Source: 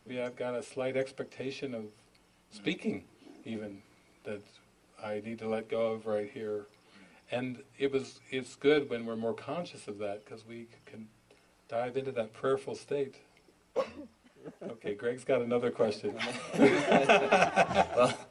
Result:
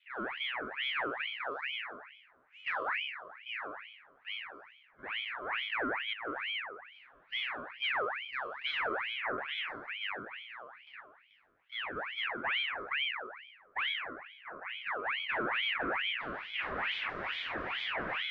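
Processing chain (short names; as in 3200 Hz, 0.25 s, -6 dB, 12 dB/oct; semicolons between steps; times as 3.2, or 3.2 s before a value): spectral trails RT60 1.22 s; 6.13–6.6 negative-ratio compressor -34 dBFS, ratio -0.5; 11–12.22 low shelf 350 Hz -11.5 dB; wavefolder -24 dBFS; Butterworth band-pass 310 Hz, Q 0.53; air absorption 55 m; ring modulator with a swept carrier 1800 Hz, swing 55%, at 2.3 Hz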